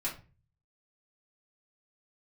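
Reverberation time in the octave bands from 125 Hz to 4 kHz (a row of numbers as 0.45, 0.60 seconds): 0.75, 0.50, 0.35, 0.30, 0.30, 0.25 seconds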